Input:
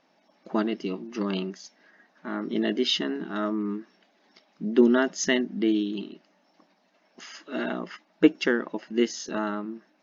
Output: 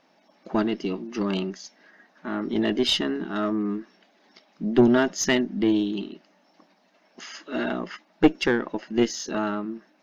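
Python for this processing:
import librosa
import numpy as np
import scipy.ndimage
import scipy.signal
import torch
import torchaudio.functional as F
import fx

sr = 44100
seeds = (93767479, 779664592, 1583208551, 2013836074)

y = fx.diode_clip(x, sr, knee_db=-16.5)
y = y * 10.0 ** (3.5 / 20.0)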